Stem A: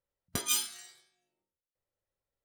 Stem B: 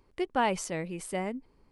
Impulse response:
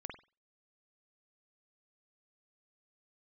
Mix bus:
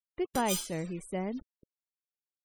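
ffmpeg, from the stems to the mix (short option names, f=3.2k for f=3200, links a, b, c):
-filter_complex "[0:a]volume=-5dB[a];[1:a]lowshelf=f=440:g=11,acrusher=bits=6:mix=0:aa=0.000001,volume=-7dB[b];[a][b]amix=inputs=2:normalize=0,afftfilt=real='re*gte(hypot(re,im),0.00398)':imag='im*gte(hypot(re,im),0.00398)':win_size=1024:overlap=0.75,lowshelf=f=130:g=-4"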